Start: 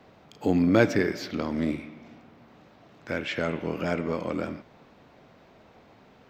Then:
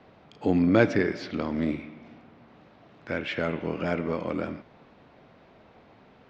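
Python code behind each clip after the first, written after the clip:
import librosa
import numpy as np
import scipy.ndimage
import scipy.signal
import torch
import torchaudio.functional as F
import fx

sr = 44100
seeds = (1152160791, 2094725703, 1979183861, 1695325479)

y = scipy.signal.sosfilt(scipy.signal.butter(2, 4300.0, 'lowpass', fs=sr, output='sos'), x)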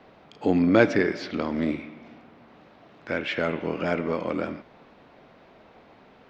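y = fx.peak_eq(x, sr, hz=100.0, db=-6.0, octaves=1.8)
y = y * librosa.db_to_amplitude(3.0)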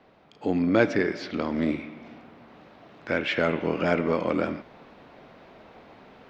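y = fx.rider(x, sr, range_db=10, speed_s=2.0)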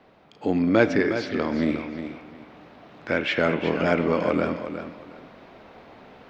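y = fx.echo_feedback(x, sr, ms=361, feedback_pct=22, wet_db=-9.5)
y = y * librosa.db_to_amplitude(2.0)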